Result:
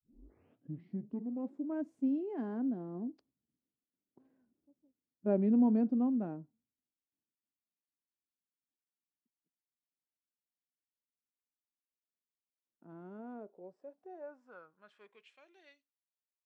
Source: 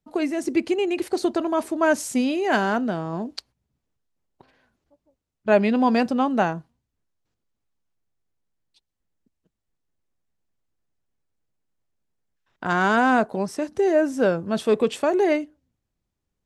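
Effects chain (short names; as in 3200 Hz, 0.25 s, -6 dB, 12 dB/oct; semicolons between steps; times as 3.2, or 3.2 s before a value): tape start at the beginning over 1.99 s; Doppler pass-by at 4.46, 21 m/s, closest 20 m; band-pass sweep 270 Hz -> 5800 Hz, 13.07–16.16; harmonic-percussive split percussive -5 dB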